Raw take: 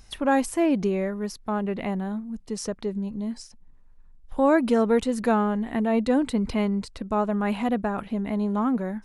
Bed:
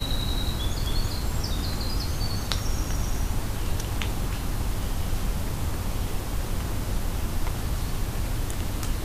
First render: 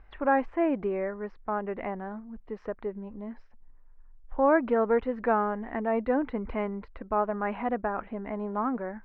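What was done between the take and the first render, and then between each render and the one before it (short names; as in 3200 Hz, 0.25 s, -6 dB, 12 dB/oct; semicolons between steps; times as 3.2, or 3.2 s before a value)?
LPF 2000 Hz 24 dB/oct; bell 150 Hz -14 dB 1.6 oct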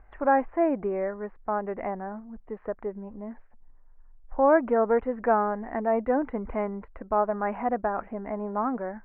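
LPF 2200 Hz 24 dB/oct; bell 700 Hz +4.5 dB 0.75 oct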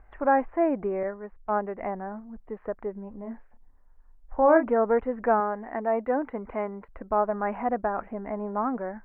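1.03–1.81 three-band expander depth 100%; 3.18–4.66 doubler 31 ms -7 dB; 5.4–6.89 low shelf 150 Hz -12 dB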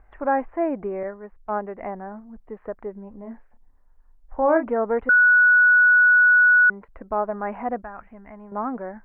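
5.09–6.7 bleep 1470 Hz -11.5 dBFS; 7.82–8.52 bell 440 Hz -14 dB 2.6 oct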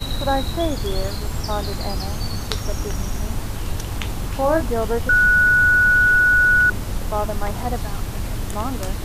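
add bed +2 dB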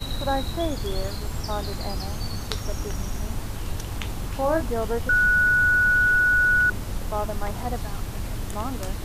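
gain -4.5 dB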